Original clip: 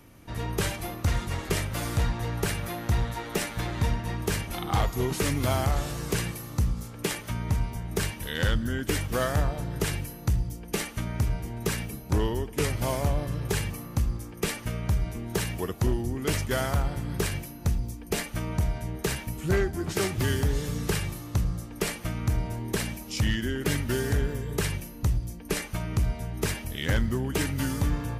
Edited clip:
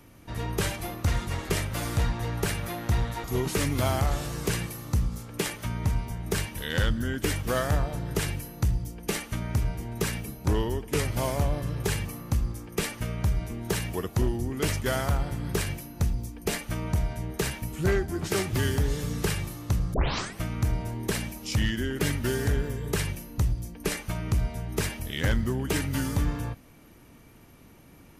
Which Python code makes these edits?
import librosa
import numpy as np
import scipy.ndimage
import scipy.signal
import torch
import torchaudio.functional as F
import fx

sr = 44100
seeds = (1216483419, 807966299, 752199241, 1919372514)

y = fx.edit(x, sr, fx.cut(start_s=3.24, length_s=1.65),
    fx.tape_start(start_s=21.59, length_s=0.45), tone=tone)